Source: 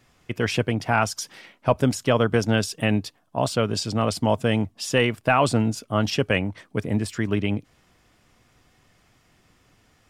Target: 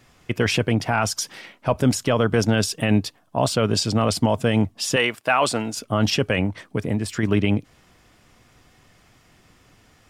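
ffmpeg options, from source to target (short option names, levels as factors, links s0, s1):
-filter_complex "[0:a]asettb=1/sr,asplit=3[s0][s1][s2];[s0]atrim=end=4.964[s3];[s1]atrim=start=4.96:end=5.77,asetpts=PTS-STARTPTS,afade=t=in:d=0.004:c=qsin,afade=t=out:st=0.806:d=0.004:c=qsin,highpass=f=720:p=1[s4];[s2]atrim=start=5.766[s5];[s3][s4]acrossfade=d=0.004:c1=hsin:c2=qsin[s6];[s6][s5]acrossfade=d=0.004:c1=qsin:c2=hsin,alimiter=limit=0.224:level=0:latency=1:release=25,asettb=1/sr,asplit=3[s7][s8][s9];[s7]atrim=end=6.454[s10];[s8]atrim=start=6.45:end=7.23,asetpts=PTS-STARTPTS,afade=t=in:d=0.004:c=qsin,afade=t=out:st=0.776:d=0.004:c=qsin,acompressor=threshold=0.0631:ratio=6[s11];[s9]atrim=start=7.226[s12];[s10][s11]acrossfade=d=0.004:c1=hsin:c2=qsin[s13];[s13][s12]acrossfade=d=0.004:c1=qsin:c2=hsin,volume=1.78"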